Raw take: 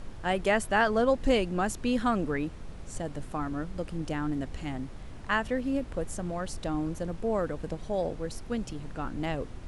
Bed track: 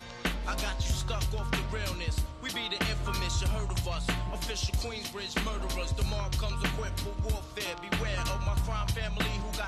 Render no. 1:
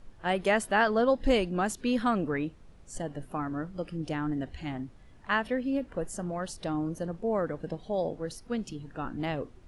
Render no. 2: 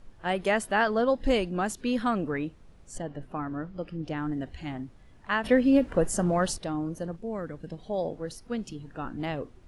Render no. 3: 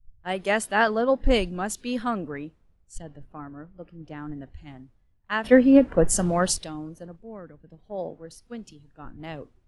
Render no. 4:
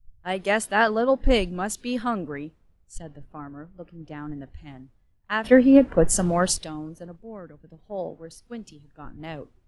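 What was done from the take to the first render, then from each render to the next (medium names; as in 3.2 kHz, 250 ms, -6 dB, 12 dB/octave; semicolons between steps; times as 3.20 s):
noise print and reduce 12 dB
2.98–4.17 s: distance through air 94 m; 5.44–6.58 s: gain +9 dB; 7.16–7.78 s: peaking EQ 750 Hz -8 dB 2.3 oct
three bands expanded up and down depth 100%
trim +1 dB; peak limiter -3 dBFS, peak gain reduction 1 dB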